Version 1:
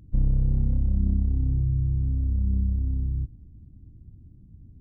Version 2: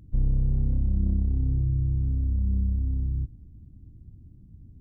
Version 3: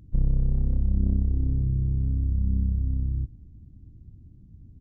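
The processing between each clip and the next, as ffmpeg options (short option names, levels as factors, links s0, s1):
-af "asoftclip=type=tanh:threshold=0.188"
-af "aeval=exprs='0.158*(cos(1*acos(clip(val(0)/0.158,-1,1)))-cos(1*PI/2))+0.0355*(cos(2*acos(clip(val(0)/0.158,-1,1)))-cos(2*PI/2))':c=same,aresample=16000,aresample=44100"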